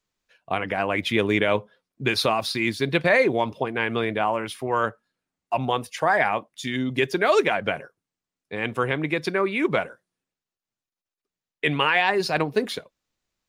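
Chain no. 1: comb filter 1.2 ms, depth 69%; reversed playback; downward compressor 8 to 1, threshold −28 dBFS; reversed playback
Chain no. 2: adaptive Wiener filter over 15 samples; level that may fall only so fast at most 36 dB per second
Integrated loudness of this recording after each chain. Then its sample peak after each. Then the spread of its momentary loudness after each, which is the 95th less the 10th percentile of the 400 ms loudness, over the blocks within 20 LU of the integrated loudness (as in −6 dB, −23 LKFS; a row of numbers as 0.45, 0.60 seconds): −32.5, −23.0 LKFS; −15.0, −5.0 dBFS; 6, 9 LU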